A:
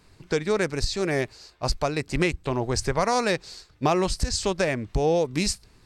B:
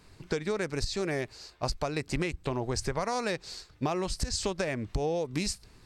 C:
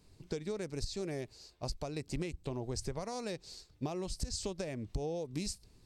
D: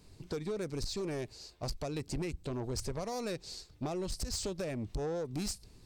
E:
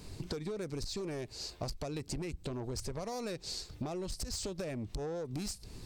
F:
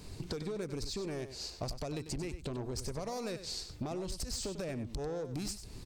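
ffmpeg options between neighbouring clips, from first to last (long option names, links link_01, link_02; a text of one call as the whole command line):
ffmpeg -i in.wav -af "acompressor=threshold=-27dB:ratio=6" out.wav
ffmpeg -i in.wav -af "equalizer=frequency=1500:width_type=o:width=1.8:gain=-10.5,volume=-5.5dB" out.wav
ffmpeg -i in.wav -af "asoftclip=type=tanh:threshold=-35.5dB,volume=5dB" out.wav
ffmpeg -i in.wav -af "acompressor=threshold=-46dB:ratio=12,volume=10dB" out.wav
ffmpeg -i in.wav -af "aecho=1:1:96:0.282" out.wav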